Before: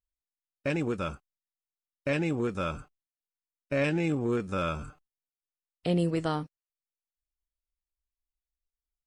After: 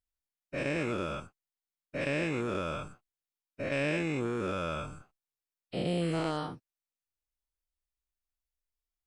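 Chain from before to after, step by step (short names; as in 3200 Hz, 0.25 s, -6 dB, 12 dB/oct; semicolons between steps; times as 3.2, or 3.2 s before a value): spectral dilation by 0.24 s; gain -7.5 dB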